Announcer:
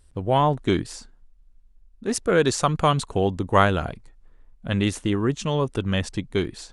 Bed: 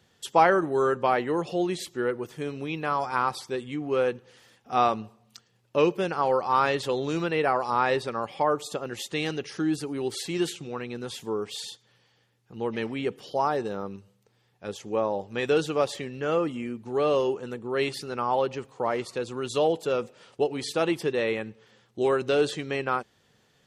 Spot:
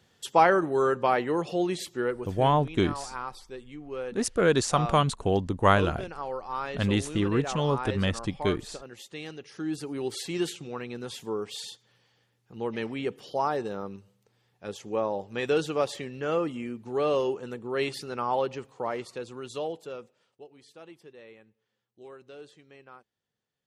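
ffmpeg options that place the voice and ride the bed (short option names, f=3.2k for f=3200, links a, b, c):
-filter_complex "[0:a]adelay=2100,volume=-3dB[a];[1:a]volume=8dB,afade=t=out:st=1.98:d=0.66:silence=0.316228,afade=t=in:st=9.46:d=0.49:silence=0.375837,afade=t=out:st=18.37:d=2.01:silence=0.0891251[b];[a][b]amix=inputs=2:normalize=0"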